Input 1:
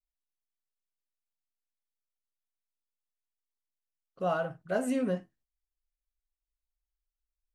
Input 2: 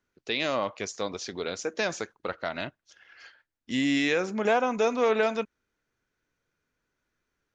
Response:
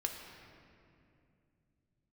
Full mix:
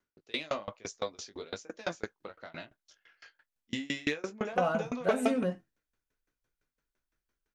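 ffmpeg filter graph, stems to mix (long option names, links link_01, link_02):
-filter_complex "[0:a]adelay=350,volume=-0.5dB[link_01];[1:a]flanger=delay=17.5:depth=2.5:speed=1.1,aeval=exprs='0.178*(cos(1*acos(clip(val(0)/0.178,-1,1)))-cos(1*PI/2))+0.00631*(cos(5*acos(clip(val(0)/0.178,-1,1)))-cos(5*PI/2))':channel_layout=same,aeval=exprs='val(0)*pow(10,-29*if(lt(mod(5.9*n/s,1),2*abs(5.9)/1000),1-mod(5.9*n/s,1)/(2*abs(5.9)/1000),(mod(5.9*n/s,1)-2*abs(5.9)/1000)/(1-2*abs(5.9)/1000))/20)':channel_layout=same,volume=2.5dB[link_02];[link_01][link_02]amix=inputs=2:normalize=0"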